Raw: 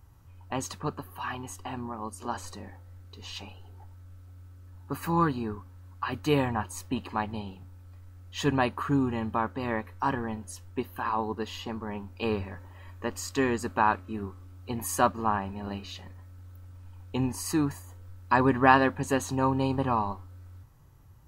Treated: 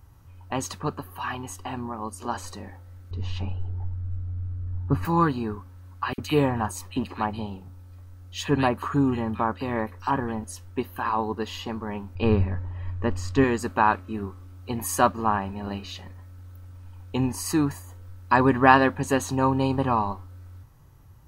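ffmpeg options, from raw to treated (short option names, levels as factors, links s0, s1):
-filter_complex "[0:a]asettb=1/sr,asplit=3[s0][s1][s2];[s0]atrim=end=3.114[s3];[s1]atrim=start=3.11:end=5.05,asetpts=PTS-STARTPTS,afade=t=in:d=0.004:c=qsin,afade=t=out:st=1.936:d=0.004:c=qsin,aemphasis=mode=reproduction:type=riaa[s4];[s2]atrim=start=5.046[s5];[s3][s4]acrossfade=d=0.004:c1=hsin:c2=qsin[s6];[s6][s5]acrossfade=d=0.004:c1=qsin:c2=hsin,asettb=1/sr,asplit=3[s7][s8][s9];[s7]atrim=end=6.134[s10];[s8]atrim=start=6.13:end=10.44,asetpts=PTS-STARTPTS,afade=t=in:d=0.004:c=qsin,afade=t=out:st=4.306:d=0.004:c=qsin,acrossover=split=2000[s11][s12];[s11]adelay=50[s13];[s13][s12]amix=inputs=2:normalize=0,atrim=end_sample=190071[s14];[s9]atrim=start=10.436[s15];[s10][s14]acrossfade=d=0.004:c1=hsin:c2=qsin[s16];[s16][s15]acrossfade=d=0.004:c1=qsin:c2=hsin,asettb=1/sr,asplit=3[s17][s18][s19];[s17]atrim=end=12.154[s20];[s18]atrim=start=12.15:end=13.44,asetpts=PTS-STARTPTS,afade=t=in:d=0.004:c=qsin,afade=t=out:st=1.286:d=0.004:c=qsin,aemphasis=mode=reproduction:type=bsi[s21];[s19]atrim=start=13.436[s22];[s20][s21]acrossfade=d=0.004:c1=hsin:c2=qsin[s23];[s23][s22]acrossfade=d=0.004:c1=qsin:c2=hsin,bandreject=f=7400:w=24,volume=1.5"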